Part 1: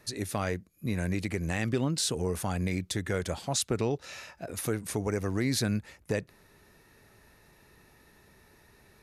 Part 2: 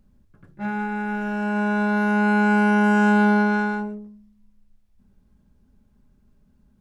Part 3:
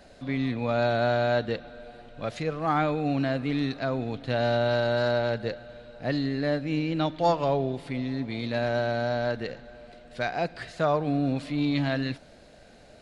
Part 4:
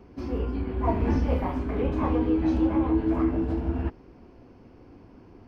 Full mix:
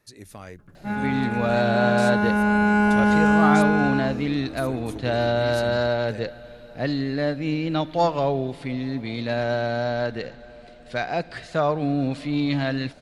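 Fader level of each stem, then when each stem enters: -9.5, -0.5, +2.5, -14.5 dB; 0.00, 0.25, 0.75, 2.00 s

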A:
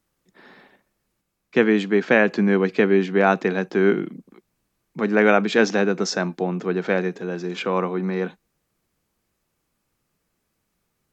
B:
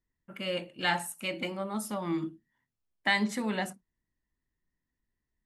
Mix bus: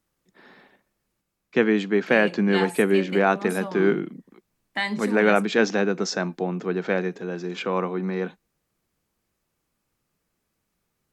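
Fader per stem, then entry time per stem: -2.5, 0.0 dB; 0.00, 1.70 s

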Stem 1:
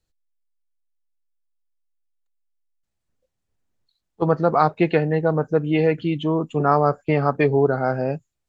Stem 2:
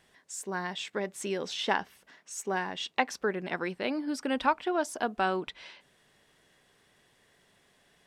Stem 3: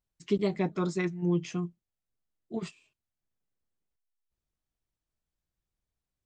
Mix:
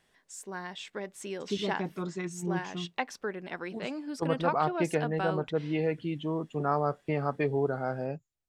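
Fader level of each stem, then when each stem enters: -10.5, -5.0, -5.5 dB; 0.00, 0.00, 1.20 s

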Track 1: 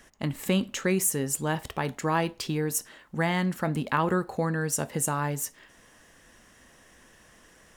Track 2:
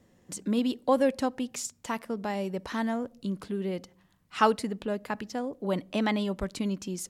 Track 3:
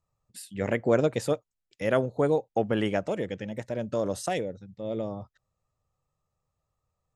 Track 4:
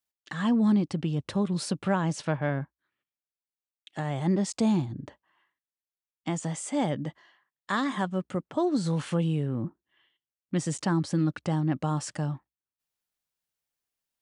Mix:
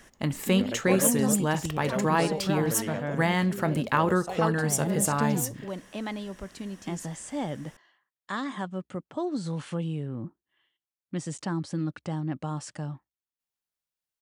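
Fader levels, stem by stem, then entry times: +1.5, -7.0, -8.5, -4.5 dB; 0.00, 0.00, 0.00, 0.60 s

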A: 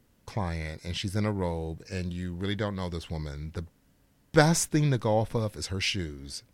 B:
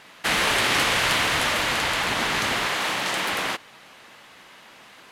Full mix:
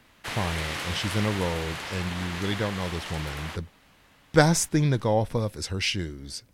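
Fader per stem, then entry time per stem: +2.0, -12.0 dB; 0.00, 0.00 s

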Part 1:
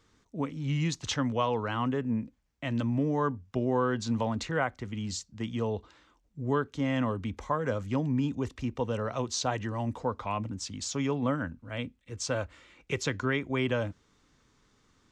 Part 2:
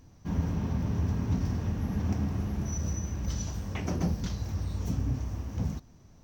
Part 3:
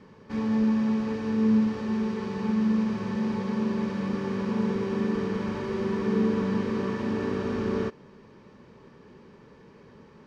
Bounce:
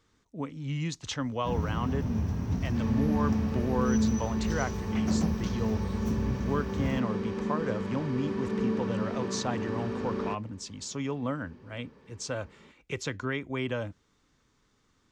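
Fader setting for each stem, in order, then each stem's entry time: -3.0, -1.5, -5.0 dB; 0.00, 1.20, 2.45 s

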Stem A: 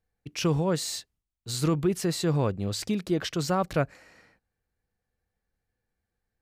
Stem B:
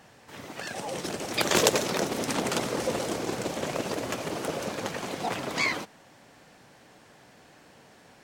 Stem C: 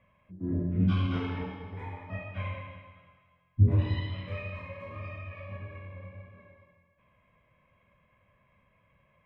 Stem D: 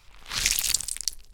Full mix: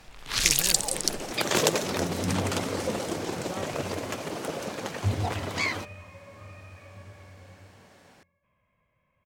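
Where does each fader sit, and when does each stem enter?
-13.5, -1.5, -6.0, +1.5 dB; 0.00, 0.00, 1.45, 0.00 s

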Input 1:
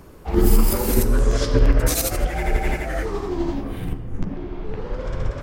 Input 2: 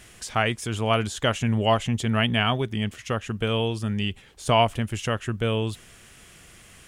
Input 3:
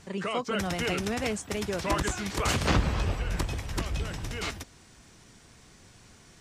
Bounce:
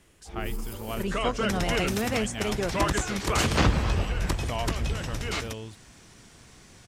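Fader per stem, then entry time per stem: -18.5, -13.5, +2.5 dB; 0.00, 0.00, 0.90 s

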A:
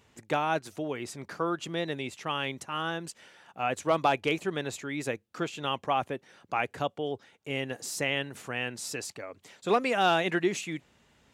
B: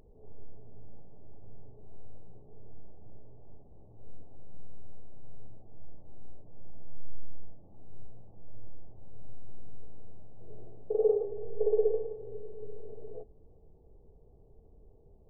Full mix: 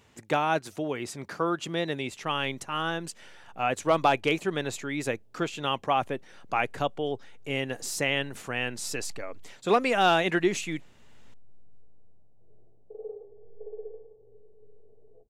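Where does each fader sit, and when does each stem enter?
+2.5, -14.0 dB; 0.00, 2.00 s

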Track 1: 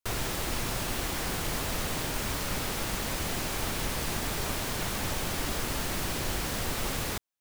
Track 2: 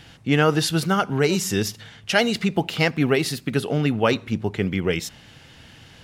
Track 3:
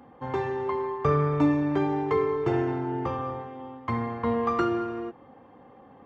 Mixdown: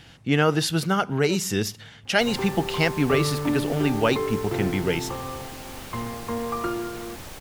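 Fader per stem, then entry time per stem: -8.0, -2.0, -3.0 dB; 2.15, 0.00, 2.05 s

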